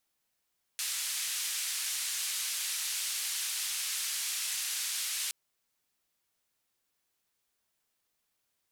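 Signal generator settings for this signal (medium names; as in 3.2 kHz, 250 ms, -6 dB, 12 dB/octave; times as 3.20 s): noise band 2.2–11 kHz, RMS -34.5 dBFS 4.52 s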